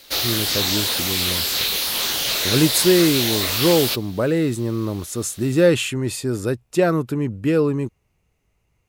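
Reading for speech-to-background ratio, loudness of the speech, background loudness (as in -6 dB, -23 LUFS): -1.5 dB, -21.0 LUFS, -19.5 LUFS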